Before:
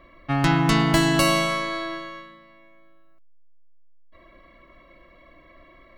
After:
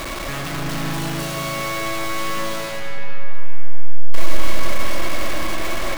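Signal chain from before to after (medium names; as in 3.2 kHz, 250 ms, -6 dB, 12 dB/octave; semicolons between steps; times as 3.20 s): one-bit comparator; algorithmic reverb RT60 4.8 s, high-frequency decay 0.45×, pre-delay 60 ms, DRR -0.5 dB; trim -2.5 dB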